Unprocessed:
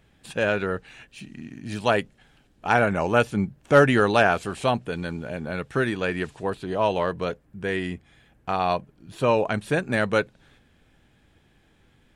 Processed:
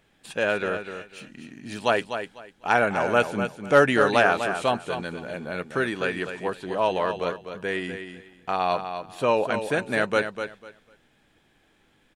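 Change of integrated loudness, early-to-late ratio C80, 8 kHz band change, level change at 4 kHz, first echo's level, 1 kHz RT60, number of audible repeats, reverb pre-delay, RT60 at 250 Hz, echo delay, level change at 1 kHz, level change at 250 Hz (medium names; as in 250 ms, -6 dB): -1.0 dB, no reverb, +0.5 dB, +0.5 dB, -8.5 dB, no reverb, 2, no reverb, no reverb, 249 ms, 0.0 dB, -3.0 dB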